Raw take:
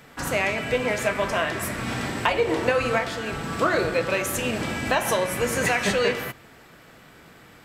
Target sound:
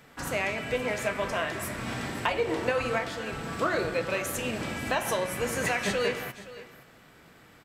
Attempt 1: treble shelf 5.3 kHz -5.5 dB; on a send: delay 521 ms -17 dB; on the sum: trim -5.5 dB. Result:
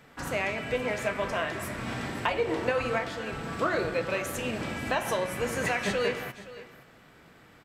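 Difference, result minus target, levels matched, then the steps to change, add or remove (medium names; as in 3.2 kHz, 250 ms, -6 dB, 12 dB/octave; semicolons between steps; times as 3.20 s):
8 kHz band -3.5 dB
remove: treble shelf 5.3 kHz -5.5 dB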